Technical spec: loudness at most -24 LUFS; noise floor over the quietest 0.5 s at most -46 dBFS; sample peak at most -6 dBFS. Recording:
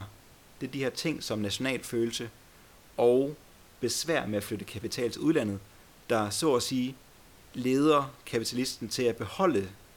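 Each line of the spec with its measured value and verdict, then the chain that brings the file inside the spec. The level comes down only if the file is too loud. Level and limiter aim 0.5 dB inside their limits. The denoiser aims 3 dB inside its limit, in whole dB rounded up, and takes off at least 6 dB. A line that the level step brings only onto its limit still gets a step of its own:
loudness -29.5 LUFS: OK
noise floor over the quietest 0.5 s -55 dBFS: OK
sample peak -12.5 dBFS: OK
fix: none

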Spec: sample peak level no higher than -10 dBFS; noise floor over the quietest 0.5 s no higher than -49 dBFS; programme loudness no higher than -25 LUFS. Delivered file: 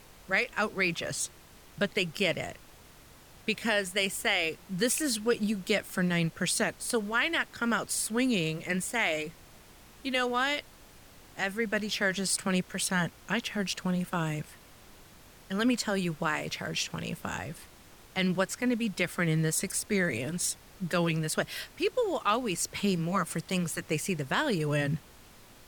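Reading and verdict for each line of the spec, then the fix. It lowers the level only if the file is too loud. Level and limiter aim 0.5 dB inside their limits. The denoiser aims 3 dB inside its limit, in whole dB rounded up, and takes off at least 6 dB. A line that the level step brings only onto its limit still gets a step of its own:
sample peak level -13.0 dBFS: OK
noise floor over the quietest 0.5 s -54 dBFS: OK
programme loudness -30.0 LUFS: OK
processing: none

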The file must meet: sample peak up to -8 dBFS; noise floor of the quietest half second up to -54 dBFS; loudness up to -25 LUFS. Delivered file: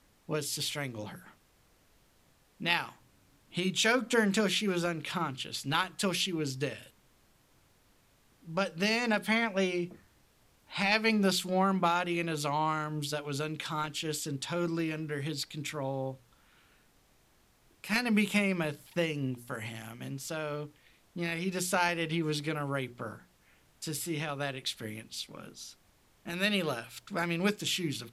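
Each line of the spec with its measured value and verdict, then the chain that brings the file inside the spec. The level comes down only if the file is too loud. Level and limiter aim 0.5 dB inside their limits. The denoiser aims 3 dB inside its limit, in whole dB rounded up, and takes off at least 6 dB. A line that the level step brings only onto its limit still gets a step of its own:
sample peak -10.5 dBFS: OK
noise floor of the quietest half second -66 dBFS: OK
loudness -32.0 LUFS: OK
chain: none

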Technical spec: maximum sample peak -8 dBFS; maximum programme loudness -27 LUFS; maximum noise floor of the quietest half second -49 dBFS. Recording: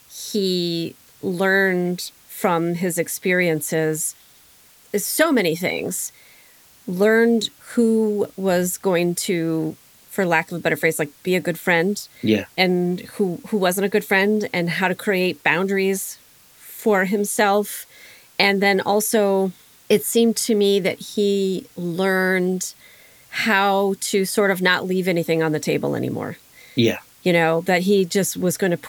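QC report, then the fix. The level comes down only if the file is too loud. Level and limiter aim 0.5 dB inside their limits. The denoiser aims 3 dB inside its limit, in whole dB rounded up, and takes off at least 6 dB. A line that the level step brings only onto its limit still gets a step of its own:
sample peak -3.5 dBFS: fail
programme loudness -20.5 LUFS: fail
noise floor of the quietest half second -51 dBFS: OK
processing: gain -7 dB

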